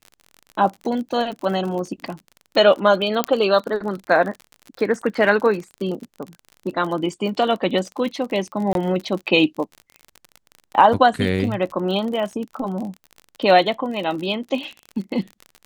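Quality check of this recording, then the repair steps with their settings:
surface crackle 40 per second −28 dBFS
0:03.24: click −4 dBFS
0:08.73–0:08.75: drop-out 22 ms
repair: click removal
repair the gap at 0:08.73, 22 ms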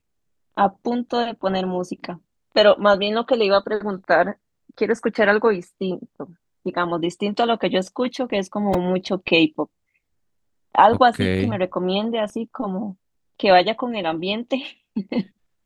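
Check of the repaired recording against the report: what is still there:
none of them is left

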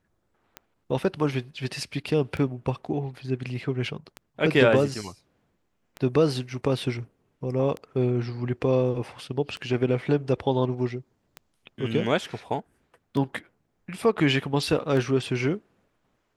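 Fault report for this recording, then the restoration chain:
scratch tick 33 1/3 rpm −20 dBFS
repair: click removal

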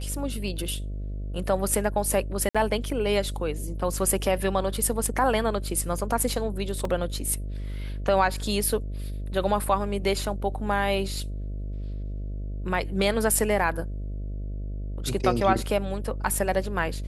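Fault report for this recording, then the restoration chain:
mains buzz 50 Hz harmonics 13 −32 dBFS
0:02.49–0:02.55: drop-out 56 ms
0:06.85: drop-out 2.4 ms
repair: hum removal 50 Hz, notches 13
repair the gap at 0:02.49, 56 ms
repair the gap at 0:06.85, 2.4 ms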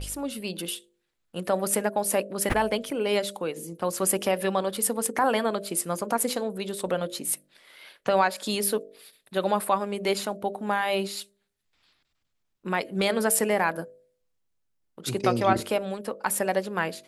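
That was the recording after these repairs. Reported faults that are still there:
none of them is left

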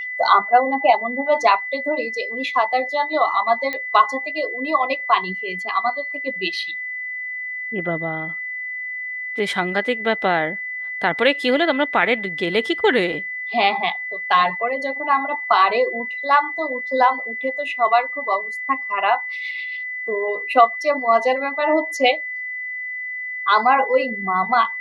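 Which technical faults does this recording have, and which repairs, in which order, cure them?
whistle 2,000 Hz −26 dBFS
0:03.73: click −13 dBFS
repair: click removal
notch filter 2,000 Hz, Q 30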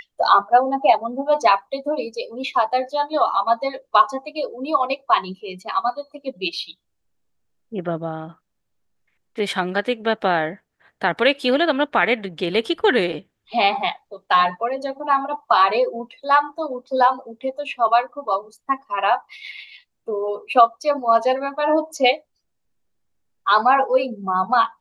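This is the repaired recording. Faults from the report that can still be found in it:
none of them is left

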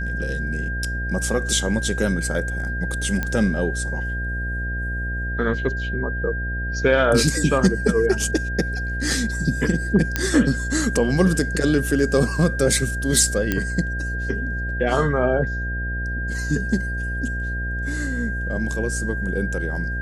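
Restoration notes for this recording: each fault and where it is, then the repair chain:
mains buzz 60 Hz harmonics 12 −27 dBFS
whistle 1,600 Hz −28 dBFS
0:03.23: click −11 dBFS
0:10.16: click −5 dBFS
0:13.52: click −7 dBFS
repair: click removal
notch filter 1,600 Hz, Q 30
hum removal 60 Hz, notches 12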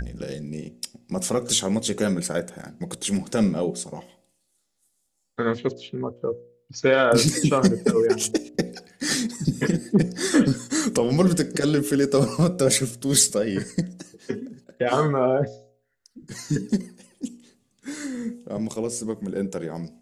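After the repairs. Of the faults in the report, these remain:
none of them is left

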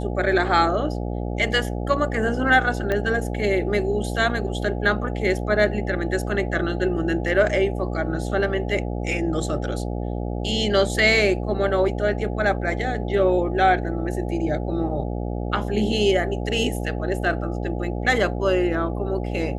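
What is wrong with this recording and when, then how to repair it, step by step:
mains buzz 60 Hz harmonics 14 −27 dBFS
0:02.92: click −12 dBFS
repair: click removal
hum removal 60 Hz, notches 14

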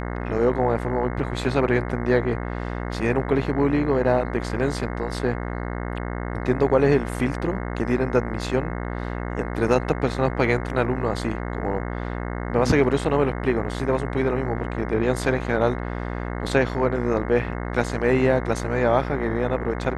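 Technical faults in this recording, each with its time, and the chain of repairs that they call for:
mains buzz 60 Hz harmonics 36 −29 dBFS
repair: hum removal 60 Hz, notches 36

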